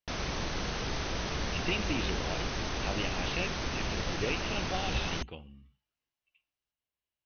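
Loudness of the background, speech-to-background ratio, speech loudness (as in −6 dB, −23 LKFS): −34.5 LKFS, −3.0 dB, −37.5 LKFS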